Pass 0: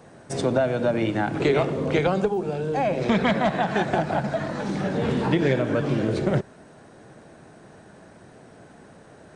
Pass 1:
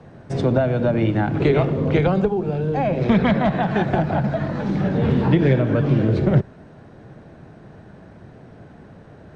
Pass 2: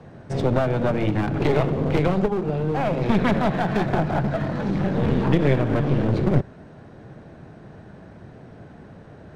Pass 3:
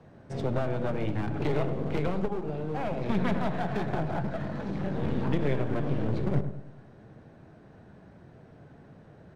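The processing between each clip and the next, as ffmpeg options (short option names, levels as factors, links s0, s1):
-filter_complex "[0:a]acrossover=split=150[s0][s1];[s0]acontrast=65[s2];[s2][s1]amix=inputs=2:normalize=0,lowpass=4100,lowshelf=f=400:g=5"
-af "aeval=exprs='clip(val(0),-1,0.0596)':c=same"
-filter_complex "[0:a]flanger=delay=3:depth=4.4:regen=86:speed=0.4:shape=triangular,asplit=2[s0][s1];[s1]adelay=104,lowpass=f=940:p=1,volume=0.376,asplit=2[s2][s3];[s3]adelay=104,lowpass=f=940:p=1,volume=0.47,asplit=2[s4][s5];[s5]adelay=104,lowpass=f=940:p=1,volume=0.47,asplit=2[s6][s7];[s7]adelay=104,lowpass=f=940:p=1,volume=0.47,asplit=2[s8][s9];[s9]adelay=104,lowpass=f=940:p=1,volume=0.47[s10];[s0][s2][s4][s6][s8][s10]amix=inputs=6:normalize=0,volume=0.596"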